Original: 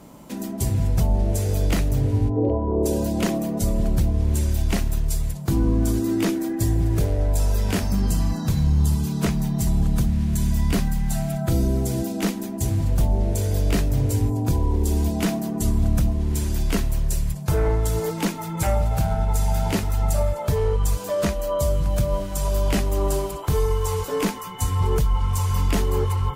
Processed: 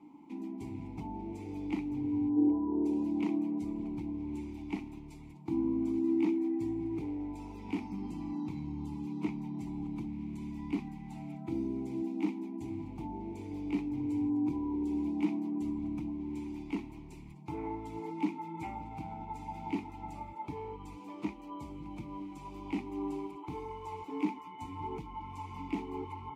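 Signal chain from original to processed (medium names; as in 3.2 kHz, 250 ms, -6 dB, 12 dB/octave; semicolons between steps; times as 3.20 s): vowel filter u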